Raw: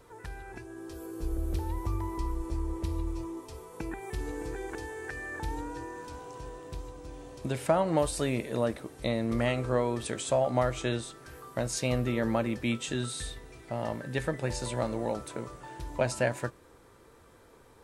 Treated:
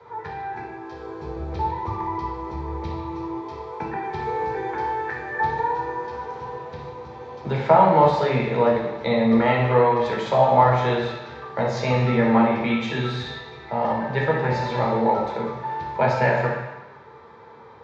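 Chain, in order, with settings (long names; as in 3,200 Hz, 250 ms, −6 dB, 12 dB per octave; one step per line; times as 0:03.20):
loudspeaker in its box 160–3,800 Hz, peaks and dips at 290 Hz −10 dB, 450 Hz +5 dB, 890 Hz +10 dB, 2,100 Hz +4 dB, 3,000 Hz −7 dB
convolution reverb RT60 1.0 s, pre-delay 3 ms, DRR −3.5 dB
level −1 dB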